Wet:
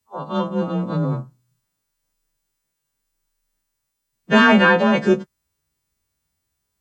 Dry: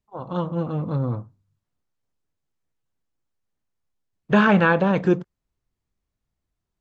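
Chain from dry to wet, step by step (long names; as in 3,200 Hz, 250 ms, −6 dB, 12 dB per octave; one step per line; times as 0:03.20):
every partial snapped to a pitch grid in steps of 2 semitones
in parallel at −12 dB: soft clipping −15.5 dBFS, distortion −11 dB
on the sum: frequency shifter +23 Hz
level +2 dB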